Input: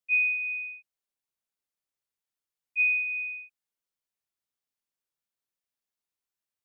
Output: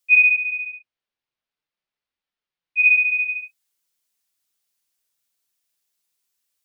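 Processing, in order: high shelf 2400 Hz +11.5 dB; flange 0.46 Hz, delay 3.3 ms, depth 6.2 ms, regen -36%; 0.36–2.86 air absorption 300 m; gain +8.5 dB

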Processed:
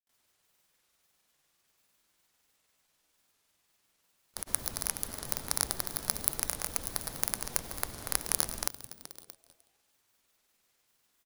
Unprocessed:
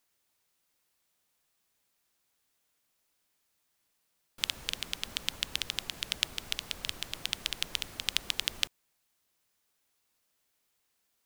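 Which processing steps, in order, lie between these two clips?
FFT order left unsorted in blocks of 16 samples; frequency-shifting echo 0.189 s, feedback 58%, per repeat -140 Hz, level -14 dB; grains, pitch spread up and down by 0 st; gain +6 dB

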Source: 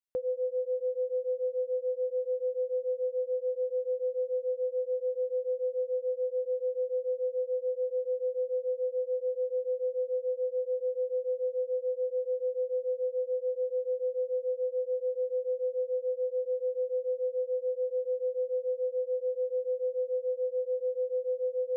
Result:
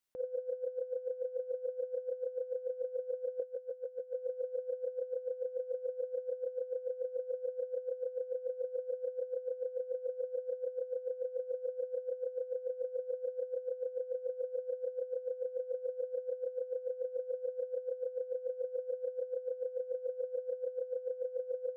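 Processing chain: 3.39–4.15 comb 6 ms, depth 53%; negative-ratio compressor -37 dBFS, ratio -0.5

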